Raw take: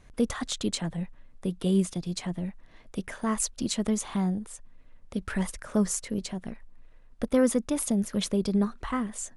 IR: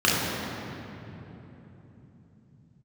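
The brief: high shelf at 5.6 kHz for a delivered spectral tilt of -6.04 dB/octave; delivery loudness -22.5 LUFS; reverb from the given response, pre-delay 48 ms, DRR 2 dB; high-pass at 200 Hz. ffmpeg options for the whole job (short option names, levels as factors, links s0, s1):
-filter_complex "[0:a]highpass=200,highshelf=f=5600:g=-6.5,asplit=2[s0][s1];[1:a]atrim=start_sample=2205,adelay=48[s2];[s1][s2]afir=irnorm=-1:irlink=0,volume=0.0891[s3];[s0][s3]amix=inputs=2:normalize=0,volume=1.68"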